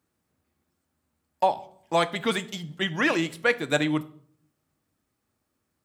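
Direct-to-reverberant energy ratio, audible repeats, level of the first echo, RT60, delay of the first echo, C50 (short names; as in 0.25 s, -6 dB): 10.0 dB, none, none, 0.55 s, none, 18.0 dB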